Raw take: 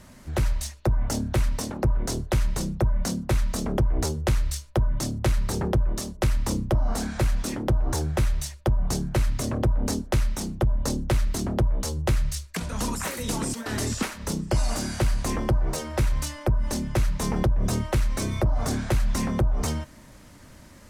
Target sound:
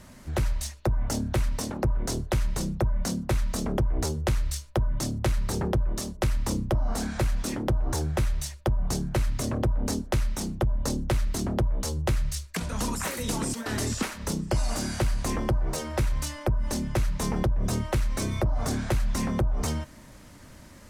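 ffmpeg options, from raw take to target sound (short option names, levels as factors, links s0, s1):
-af "acompressor=threshold=0.0501:ratio=1.5"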